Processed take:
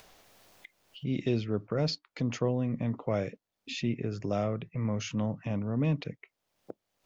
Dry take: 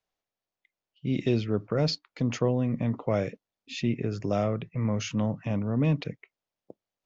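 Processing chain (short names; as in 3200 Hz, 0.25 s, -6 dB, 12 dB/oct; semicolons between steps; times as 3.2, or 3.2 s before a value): upward compressor, threshold -29 dBFS; gain -3.5 dB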